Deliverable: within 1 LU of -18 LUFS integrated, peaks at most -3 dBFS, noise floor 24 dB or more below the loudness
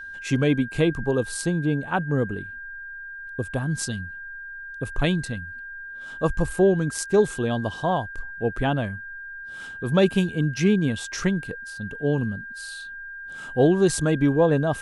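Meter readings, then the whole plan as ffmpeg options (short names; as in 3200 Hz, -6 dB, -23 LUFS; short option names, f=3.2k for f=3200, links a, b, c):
steady tone 1600 Hz; tone level -35 dBFS; loudness -24.5 LUFS; peak -7.5 dBFS; loudness target -18.0 LUFS
-> -af "bandreject=f=1.6k:w=30"
-af "volume=6.5dB,alimiter=limit=-3dB:level=0:latency=1"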